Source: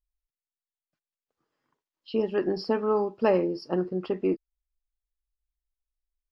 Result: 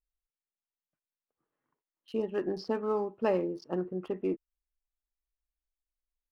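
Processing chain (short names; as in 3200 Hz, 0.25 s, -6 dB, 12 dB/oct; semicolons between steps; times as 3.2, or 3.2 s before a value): Wiener smoothing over 9 samples; gain -5.5 dB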